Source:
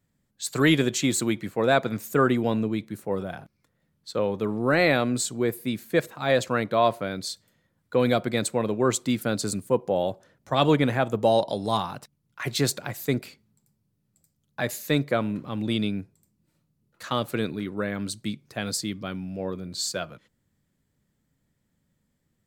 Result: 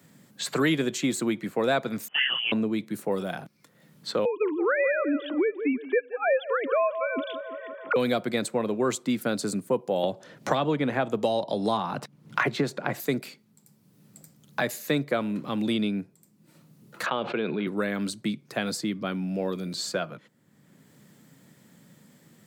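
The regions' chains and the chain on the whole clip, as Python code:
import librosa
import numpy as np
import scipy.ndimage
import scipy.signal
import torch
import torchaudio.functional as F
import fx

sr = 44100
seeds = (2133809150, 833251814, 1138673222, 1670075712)

y = fx.chain(x, sr, fx.freq_invert(carrier_hz=3200),
    fx.detune_double(cents=19), at=(2.08, 2.52))
y = fx.chain(y, sr, fx.sine_speech(),
    fx.echo_wet_bandpass(ms=170, feedback_pct=33, hz=780.0, wet_db=-12.5),
    fx.band_squash(depth_pct=70), at=(4.25, 7.96))
y = fx.chain(y, sr, fx.lowpass(hz=2000.0, slope=6),
    fx.band_squash(depth_pct=100), at=(10.03, 13.0))
y = fx.chain(y, sr, fx.cabinet(low_hz=240.0, low_slope=12, high_hz=2800.0, hz=(280.0, 580.0, 1200.0, 1900.0), db=(-10, -3, -5, -9)),
    fx.env_flatten(amount_pct=70), at=(17.06, 17.67))
y = scipy.signal.sosfilt(scipy.signal.butter(4, 140.0, 'highpass', fs=sr, output='sos'), y)
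y = fx.band_squash(y, sr, depth_pct=70)
y = y * librosa.db_to_amplitude(-1.5)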